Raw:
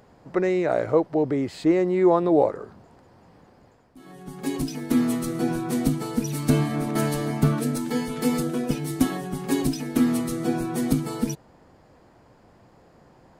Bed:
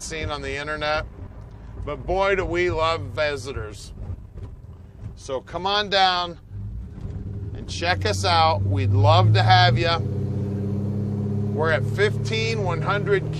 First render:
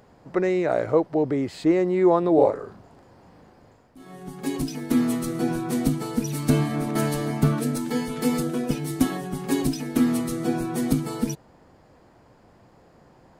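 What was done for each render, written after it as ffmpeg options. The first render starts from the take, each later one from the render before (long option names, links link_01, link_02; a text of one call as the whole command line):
ffmpeg -i in.wav -filter_complex "[0:a]asettb=1/sr,asplit=3[link_01][link_02][link_03];[link_01]atrim=end=2.344[link_04];[link_02]atrim=start=2.34:end=4.3,asetpts=PTS-STARTPTS,afade=type=in:duration=0.004:curve=qsin,afade=type=out:start_time=1.956:duration=0.004:curve=qsin,asplit=2[link_05][link_06];[link_06]adelay=38,volume=-4dB[link_07];[link_05][link_07]amix=inputs=2:normalize=0,atrim=end_sample=86436[link_08];[link_03]atrim=start=4.296[link_09];[link_04][link_08]acrossfade=duration=0.004:curve1=hsin:curve2=qsin[link_10];[link_10][link_09]acrossfade=duration=0.004:curve1=qsin:curve2=hsin" out.wav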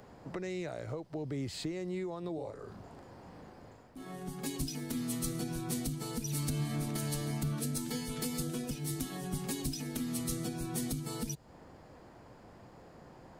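ffmpeg -i in.wav -filter_complex "[0:a]alimiter=limit=-17.5dB:level=0:latency=1:release=274,acrossover=split=140|3000[link_01][link_02][link_03];[link_02]acompressor=threshold=-43dB:ratio=3[link_04];[link_01][link_04][link_03]amix=inputs=3:normalize=0" out.wav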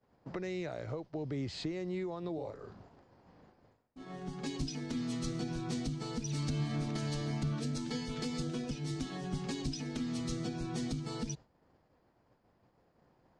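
ffmpeg -i in.wav -af "lowpass=frequency=6200:width=0.5412,lowpass=frequency=6200:width=1.3066,agate=range=-33dB:threshold=-43dB:ratio=3:detection=peak" out.wav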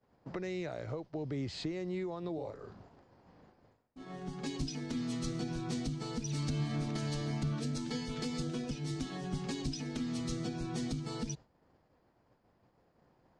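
ffmpeg -i in.wav -af anull out.wav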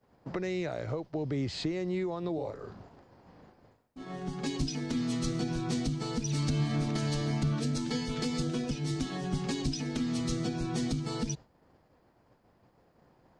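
ffmpeg -i in.wav -af "volume=5dB" out.wav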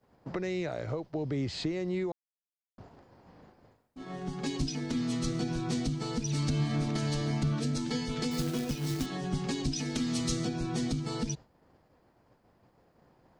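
ffmpeg -i in.wav -filter_complex "[0:a]asettb=1/sr,asplit=3[link_01][link_02][link_03];[link_01]atrim=end=8.314[link_04];[link_02]atrim=start=8.31:end=9.06,asetpts=PTS-STARTPTS,afade=type=in:duration=0.004:curve=qsin,afade=type=out:start_time=0.746:duration=0.004:curve=qsin,acrusher=bits=3:mode=log:mix=0:aa=0.000001[link_05];[link_03]atrim=start=9.056[link_06];[link_04][link_05]acrossfade=duration=0.004:curve1=hsin:curve2=qsin[link_07];[link_07][link_06]acrossfade=duration=0.004:curve1=qsin:curve2=hsin,asettb=1/sr,asplit=3[link_08][link_09][link_10];[link_08]atrim=end=9.764[link_11];[link_09]atrim=start=9.76:end=10.45,asetpts=PTS-STARTPTS,afade=type=in:duration=0.004:curve=qsin,afade=type=out:start_time=0.686:duration=0.004:curve=qsin,highshelf=frequency=3200:gain=7.5[link_12];[link_10]atrim=start=10.446[link_13];[link_11][link_12]acrossfade=duration=0.004:curve1=hsin:curve2=qsin[link_14];[link_14][link_13]acrossfade=duration=0.004:curve1=qsin:curve2=hsin,asplit=3[link_15][link_16][link_17];[link_15]atrim=end=2.12,asetpts=PTS-STARTPTS,afade=type=out:start_time=2.116:duration=0.004:curve=hsin[link_18];[link_16]atrim=start=2.12:end=2.78,asetpts=PTS-STARTPTS,volume=0[link_19];[link_17]atrim=start=2.78,asetpts=PTS-STARTPTS,afade=type=in:duration=0.004:curve=hsin[link_20];[link_18][link_19][link_20]concat=n=3:v=0:a=1" out.wav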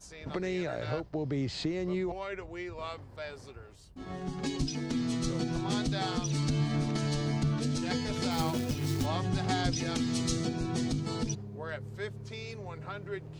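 ffmpeg -i in.wav -i bed.wav -filter_complex "[1:a]volume=-18dB[link_01];[0:a][link_01]amix=inputs=2:normalize=0" out.wav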